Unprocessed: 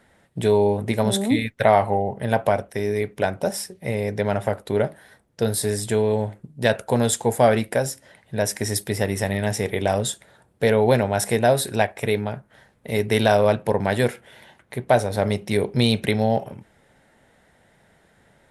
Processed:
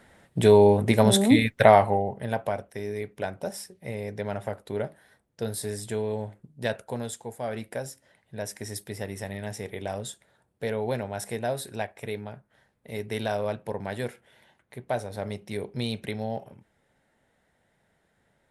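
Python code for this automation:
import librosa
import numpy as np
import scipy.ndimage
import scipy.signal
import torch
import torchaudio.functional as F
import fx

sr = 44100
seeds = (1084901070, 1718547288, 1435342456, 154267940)

y = fx.gain(x, sr, db=fx.line((1.6, 2.0), (2.43, -9.0), (6.67, -9.0), (7.39, -18.0), (7.64, -11.5)))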